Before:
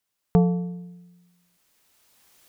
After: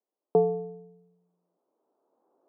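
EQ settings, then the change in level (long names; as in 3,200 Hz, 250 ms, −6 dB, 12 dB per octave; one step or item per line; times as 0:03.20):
Gaussian smoothing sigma 12 samples
high-pass filter 320 Hz 24 dB per octave
+7.0 dB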